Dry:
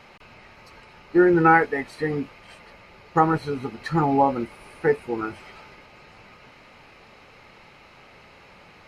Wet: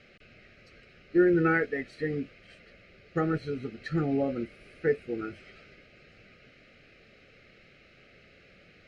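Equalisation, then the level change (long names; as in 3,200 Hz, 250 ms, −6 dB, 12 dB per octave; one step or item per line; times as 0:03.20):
Butterworth band-reject 950 Hz, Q 1.2
high-frequency loss of the air 78 metres
−5.0 dB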